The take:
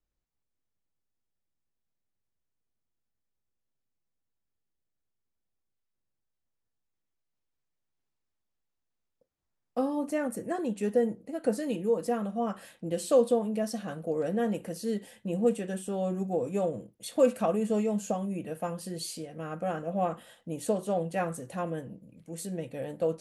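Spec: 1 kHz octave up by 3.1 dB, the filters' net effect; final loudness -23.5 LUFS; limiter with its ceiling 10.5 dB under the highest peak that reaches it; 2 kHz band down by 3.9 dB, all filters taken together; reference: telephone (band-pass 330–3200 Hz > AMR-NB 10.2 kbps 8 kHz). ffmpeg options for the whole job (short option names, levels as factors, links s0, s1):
-af "equalizer=f=1000:t=o:g=6.5,equalizer=f=2000:t=o:g=-7.5,alimiter=limit=0.0891:level=0:latency=1,highpass=330,lowpass=3200,volume=3.76" -ar 8000 -c:a libopencore_amrnb -b:a 10200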